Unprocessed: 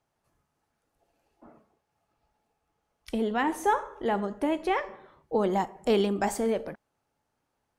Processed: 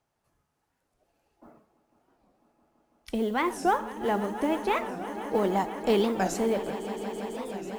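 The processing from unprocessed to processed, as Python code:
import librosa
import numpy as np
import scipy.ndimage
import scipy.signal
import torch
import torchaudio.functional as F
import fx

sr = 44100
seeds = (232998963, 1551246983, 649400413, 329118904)

y = fx.echo_swell(x, sr, ms=166, loudest=5, wet_db=-16)
y = fx.mod_noise(y, sr, seeds[0], snr_db=30)
y = fx.record_warp(y, sr, rpm=45.0, depth_cents=250.0)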